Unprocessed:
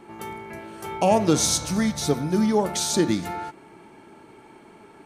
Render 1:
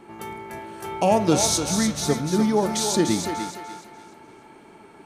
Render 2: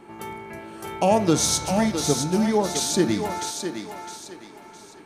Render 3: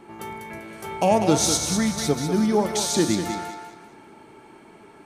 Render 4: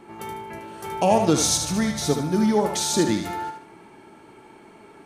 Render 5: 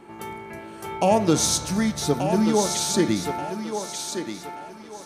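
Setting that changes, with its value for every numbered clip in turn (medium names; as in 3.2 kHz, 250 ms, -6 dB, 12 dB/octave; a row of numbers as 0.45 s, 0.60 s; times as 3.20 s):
thinning echo, time: 295 ms, 660 ms, 196 ms, 75 ms, 1182 ms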